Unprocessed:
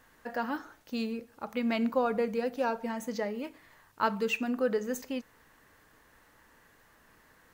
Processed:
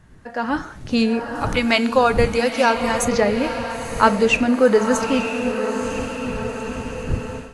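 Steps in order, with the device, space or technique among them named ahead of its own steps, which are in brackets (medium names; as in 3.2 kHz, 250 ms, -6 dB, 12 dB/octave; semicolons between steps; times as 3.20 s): 1.35–3.05 s: tilt EQ +3 dB/octave; echo that smears into a reverb 944 ms, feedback 57%, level -8.5 dB; smartphone video outdoors (wind noise 140 Hz -47 dBFS; level rider gain up to 14 dB; trim +1.5 dB; AAC 64 kbps 24 kHz)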